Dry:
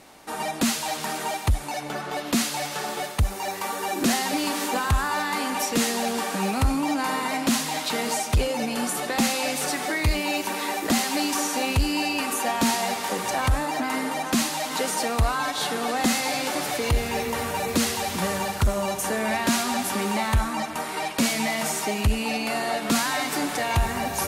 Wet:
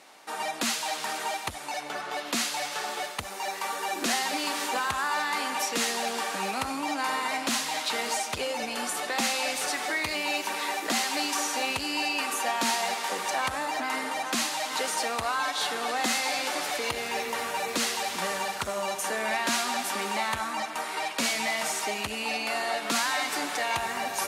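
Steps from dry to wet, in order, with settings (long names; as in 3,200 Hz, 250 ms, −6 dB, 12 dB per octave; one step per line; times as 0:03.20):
meter weighting curve A
level −2 dB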